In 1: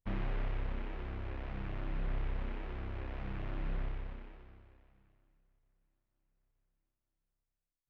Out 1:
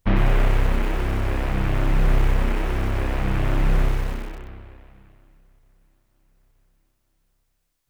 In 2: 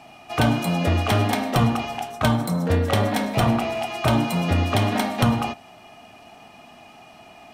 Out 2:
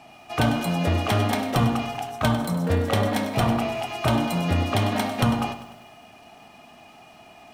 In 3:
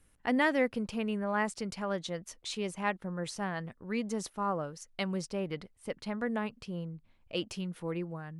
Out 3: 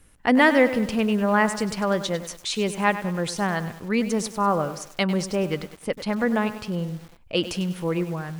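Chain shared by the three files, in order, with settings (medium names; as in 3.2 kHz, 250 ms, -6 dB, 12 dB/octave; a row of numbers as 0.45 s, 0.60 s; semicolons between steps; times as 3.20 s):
bit-crushed delay 99 ms, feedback 55%, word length 8-bit, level -12 dB; normalise loudness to -24 LUFS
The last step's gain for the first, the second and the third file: +18.0 dB, -2.0 dB, +10.5 dB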